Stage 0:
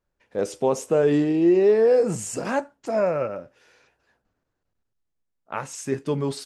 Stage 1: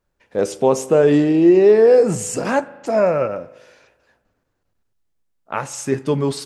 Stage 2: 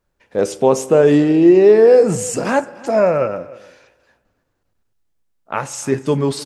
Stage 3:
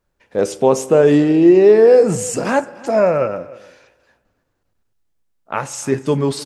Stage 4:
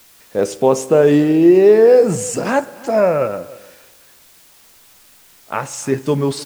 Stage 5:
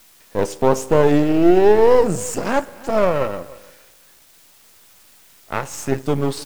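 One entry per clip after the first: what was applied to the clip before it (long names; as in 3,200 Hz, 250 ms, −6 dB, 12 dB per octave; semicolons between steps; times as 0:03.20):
spring reverb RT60 1.3 s, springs 38 ms, chirp 65 ms, DRR 18 dB; level +6 dB
single-tap delay 301 ms −21.5 dB; level +2 dB
no processing that can be heard
bit-depth reduction 8 bits, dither triangular
gain on one half-wave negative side −12 dB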